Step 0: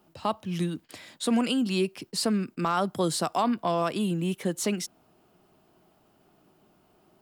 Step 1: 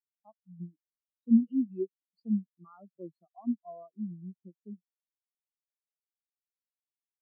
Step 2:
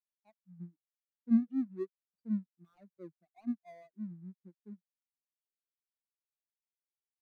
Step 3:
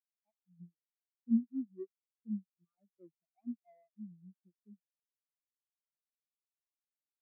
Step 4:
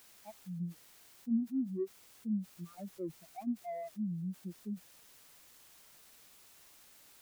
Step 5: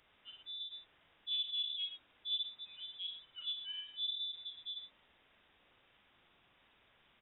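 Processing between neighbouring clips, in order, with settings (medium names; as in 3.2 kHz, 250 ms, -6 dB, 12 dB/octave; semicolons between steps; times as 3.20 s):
spectral contrast expander 4:1; trim +2 dB
median filter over 41 samples; trim -4.5 dB
in parallel at -1 dB: compression, threshold -39 dBFS, peak gain reduction 16.5 dB; on the sum: spectral contrast expander 1.5:1; trim -3.5 dB
level flattener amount 70%; trim -4 dB
valve stage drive 32 dB, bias 0.35; multi-tap echo 42/56/113 ms -9.5/-7.5/-9 dB; frequency inversion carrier 3.7 kHz; trim -2.5 dB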